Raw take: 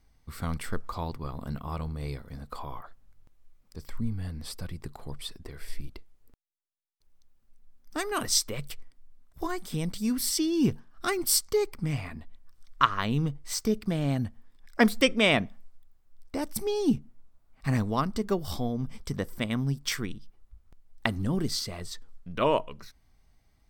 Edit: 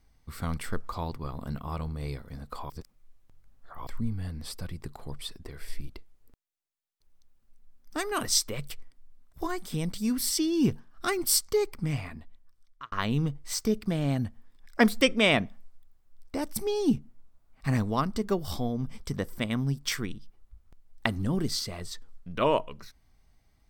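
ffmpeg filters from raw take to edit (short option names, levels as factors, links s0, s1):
-filter_complex "[0:a]asplit=4[s0][s1][s2][s3];[s0]atrim=end=2.702[s4];[s1]atrim=start=2.698:end=3.872,asetpts=PTS-STARTPTS,areverse[s5];[s2]atrim=start=3.868:end=12.92,asetpts=PTS-STARTPTS,afade=t=out:st=8.092:d=0.96[s6];[s3]atrim=start=12.92,asetpts=PTS-STARTPTS,afade=t=in:d=0.004:c=hsin[s7];[s4][s5]acrossfade=d=0.004:c1=hsin:c2=hsin[s8];[s6][s7]concat=n=2:v=0:a=1[s9];[s8][s9]acrossfade=d=0.004:c1=hsin:c2=hsin"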